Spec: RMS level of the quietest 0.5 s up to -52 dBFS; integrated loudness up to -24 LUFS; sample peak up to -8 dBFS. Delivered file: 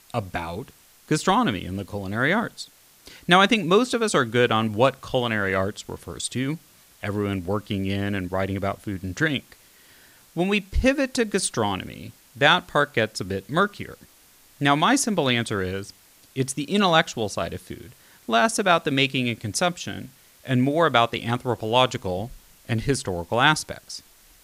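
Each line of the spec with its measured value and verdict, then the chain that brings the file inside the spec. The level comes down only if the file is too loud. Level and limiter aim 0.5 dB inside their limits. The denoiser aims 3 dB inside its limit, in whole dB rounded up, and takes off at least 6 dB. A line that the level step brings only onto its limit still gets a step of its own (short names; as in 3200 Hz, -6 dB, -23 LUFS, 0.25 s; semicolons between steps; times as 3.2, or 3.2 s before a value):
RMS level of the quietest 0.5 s -54 dBFS: OK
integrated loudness -23.0 LUFS: fail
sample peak -3.5 dBFS: fail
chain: gain -1.5 dB; limiter -8.5 dBFS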